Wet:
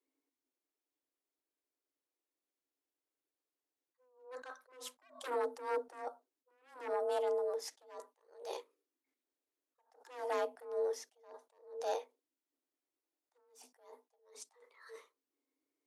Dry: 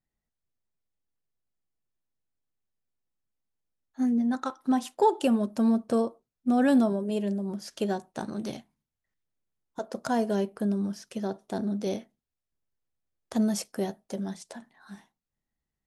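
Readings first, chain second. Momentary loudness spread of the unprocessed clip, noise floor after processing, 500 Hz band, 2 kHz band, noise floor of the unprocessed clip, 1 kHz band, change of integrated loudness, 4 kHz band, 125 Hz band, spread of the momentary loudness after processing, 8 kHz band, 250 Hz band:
13 LU, under -85 dBFS, -7.5 dB, -9.5 dB, under -85 dBFS, -10.5 dB, -11.5 dB, -10.0 dB, under -40 dB, 20 LU, -10.0 dB, -35.5 dB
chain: added harmonics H 2 -14 dB, 3 -6 dB, 4 -18 dB, 7 -19 dB, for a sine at -11.5 dBFS; frequency shift +250 Hz; attack slew limiter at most 120 dB/s; gain -5 dB

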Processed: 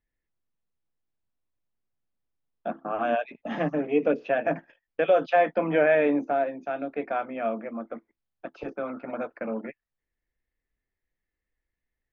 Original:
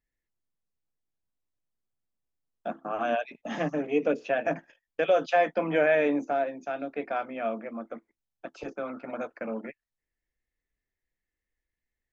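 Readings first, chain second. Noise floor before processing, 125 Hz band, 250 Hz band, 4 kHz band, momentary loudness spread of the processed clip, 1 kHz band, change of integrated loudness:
under -85 dBFS, +3.0 dB, +2.5 dB, n/a, 17 LU, +2.0 dB, +2.0 dB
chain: air absorption 240 m; gain +3 dB

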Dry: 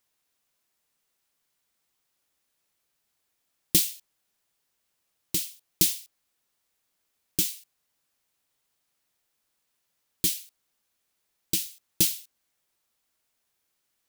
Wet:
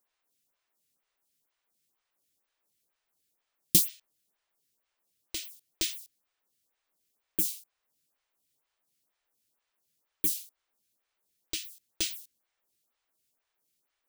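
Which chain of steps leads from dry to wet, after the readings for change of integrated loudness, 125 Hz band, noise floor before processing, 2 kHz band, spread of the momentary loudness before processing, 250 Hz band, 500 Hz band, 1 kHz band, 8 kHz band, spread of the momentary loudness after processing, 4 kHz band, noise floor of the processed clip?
-3.5 dB, -5.5 dB, -78 dBFS, -3.0 dB, 15 LU, -5.0 dB, -4.5 dB, n/a, -5.0 dB, 20 LU, -4.0 dB, -84 dBFS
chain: photocell phaser 2.1 Hz

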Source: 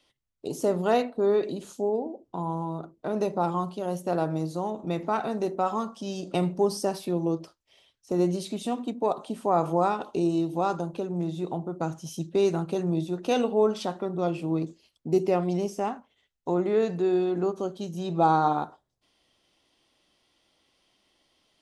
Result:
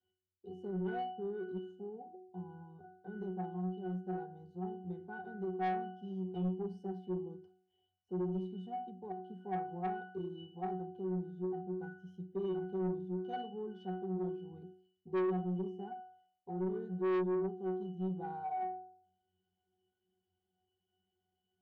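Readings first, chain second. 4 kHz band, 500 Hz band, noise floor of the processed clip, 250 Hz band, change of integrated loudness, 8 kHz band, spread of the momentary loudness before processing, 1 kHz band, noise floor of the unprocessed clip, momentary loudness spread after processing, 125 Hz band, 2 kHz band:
-18.5 dB, -13.0 dB, under -85 dBFS, -10.5 dB, -12.0 dB, under -35 dB, 9 LU, -12.5 dB, -75 dBFS, 13 LU, -9.5 dB, -10.0 dB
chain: octave resonator F#, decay 0.6 s; soft clip -35.5 dBFS, distortion -8 dB; gain +6 dB

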